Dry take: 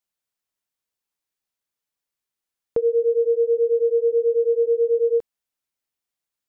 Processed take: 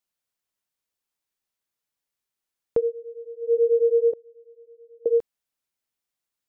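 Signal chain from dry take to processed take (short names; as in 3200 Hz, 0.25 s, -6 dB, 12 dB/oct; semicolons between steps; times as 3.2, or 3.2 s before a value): 2.8–3.54 dip -18.5 dB, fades 0.13 s; 4.13–5.06 flipped gate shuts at -22 dBFS, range -30 dB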